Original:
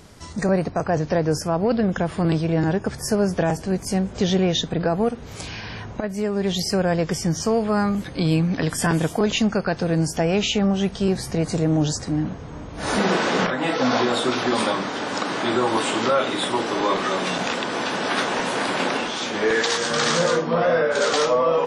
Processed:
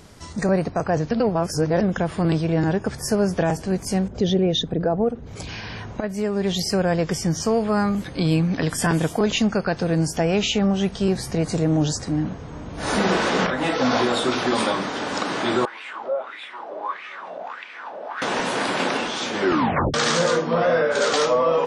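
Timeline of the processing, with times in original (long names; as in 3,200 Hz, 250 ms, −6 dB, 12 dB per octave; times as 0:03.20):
0:01.11–0:01.81: reverse
0:04.08–0:05.49: spectral envelope exaggerated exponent 1.5
0:12.26–0:12.90: delay throw 390 ms, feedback 75%, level −8 dB
0:15.65–0:18.22: LFO wah 1.6 Hz 580–2,400 Hz, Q 5.3
0:19.39: tape stop 0.55 s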